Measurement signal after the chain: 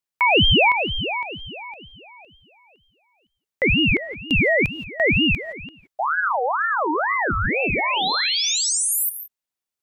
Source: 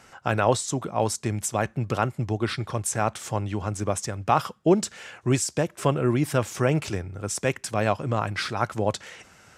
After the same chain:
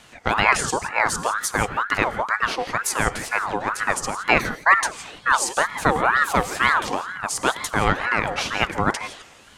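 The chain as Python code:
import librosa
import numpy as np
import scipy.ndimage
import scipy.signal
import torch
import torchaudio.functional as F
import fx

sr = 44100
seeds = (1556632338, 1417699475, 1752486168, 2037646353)

y = fx.rev_gated(x, sr, seeds[0], gate_ms=190, shape='rising', drr_db=10.0)
y = fx.ring_lfo(y, sr, carrier_hz=1100.0, swing_pct=45, hz=2.1)
y = F.gain(torch.from_numpy(y), 6.0).numpy()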